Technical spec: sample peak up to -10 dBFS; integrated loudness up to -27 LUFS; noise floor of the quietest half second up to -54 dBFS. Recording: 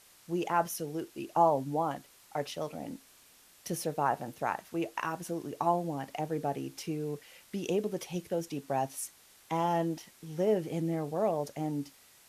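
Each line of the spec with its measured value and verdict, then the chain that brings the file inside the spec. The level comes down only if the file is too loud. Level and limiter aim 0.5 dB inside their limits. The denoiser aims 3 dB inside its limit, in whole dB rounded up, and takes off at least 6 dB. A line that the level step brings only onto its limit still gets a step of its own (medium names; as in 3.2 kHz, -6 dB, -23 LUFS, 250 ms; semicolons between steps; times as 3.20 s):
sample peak -13.0 dBFS: pass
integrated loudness -33.5 LUFS: pass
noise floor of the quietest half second -60 dBFS: pass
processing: none needed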